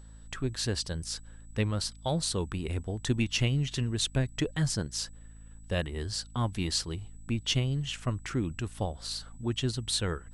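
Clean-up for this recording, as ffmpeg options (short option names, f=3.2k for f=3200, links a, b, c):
-af "bandreject=f=54.4:t=h:w=4,bandreject=f=108.8:t=h:w=4,bandreject=f=163.2:t=h:w=4,bandreject=f=217.6:t=h:w=4,bandreject=f=272:t=h:w=4,bandreject=f=7.9k:w=30"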